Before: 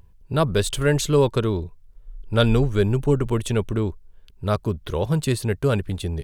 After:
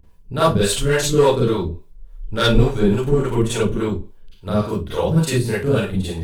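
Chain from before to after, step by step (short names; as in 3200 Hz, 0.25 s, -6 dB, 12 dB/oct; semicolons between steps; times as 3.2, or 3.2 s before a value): hard clip -11.5 dBFS, distortion -21 dB; Schroeder reverb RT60 0.33 s, combs from 33 ms, DRR -8.5 dB; harmonic tremolo 3.5 Hz, depth 70%, crossover 440 Hz; gain -1 dB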